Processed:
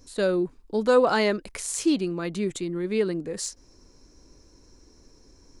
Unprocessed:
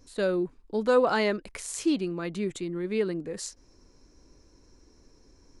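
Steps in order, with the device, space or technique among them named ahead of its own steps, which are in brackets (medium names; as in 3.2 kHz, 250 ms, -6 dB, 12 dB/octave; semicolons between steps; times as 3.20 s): exciter from parts (in parallel at -6 dB: high-pass 3.3 kHz 12 dB/octave + saturation -30.5 dBFS, distortion -15 dB); on the sum: trim +3 dB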